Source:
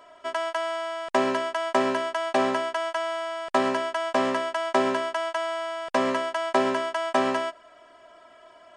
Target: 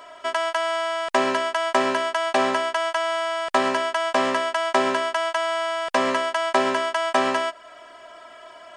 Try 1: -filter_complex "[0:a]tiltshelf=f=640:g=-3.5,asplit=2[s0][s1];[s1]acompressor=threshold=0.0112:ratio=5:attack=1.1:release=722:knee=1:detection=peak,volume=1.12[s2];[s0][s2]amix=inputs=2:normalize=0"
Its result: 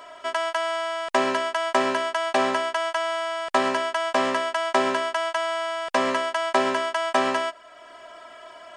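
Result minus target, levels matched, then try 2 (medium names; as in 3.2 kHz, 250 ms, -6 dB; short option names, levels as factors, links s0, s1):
compression: peak gain reduction +8 dB
-filter_complex "[0:a]tiltshelf=f=640:g=-3.5,asplit=2[s0][s1];[s1]acompressor=threshold=0.0355:ratio=5:attack=1.1:release=722:knee=1:detection=peak,volume=1.12[s2];[s0][s2]amix=inputs=2:normalize=0"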